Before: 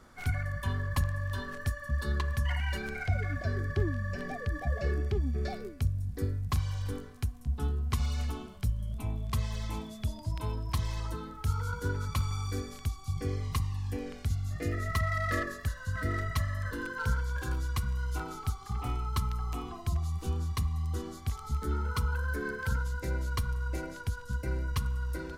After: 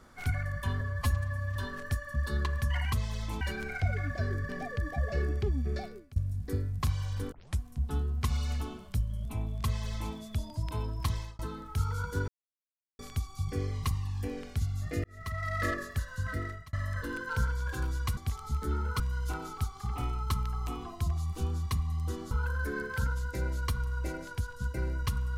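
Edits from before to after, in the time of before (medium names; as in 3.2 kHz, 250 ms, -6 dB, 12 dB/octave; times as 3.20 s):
0.81–1.31 s: stretch 1.5×
3.75–4.18 s: delete
5.40–5.85 s: fade out, to -23.5 dB
7.01 s: tape start 0.27 s
9.33–9.82 s: copy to 2.67 s
10.81–11.08 s: fade out
11.97–12.68 s: mute
14.73–15.34 s: fade in
15.93–16.42 s: fade out
21.17–22.00 s: move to 17.86 s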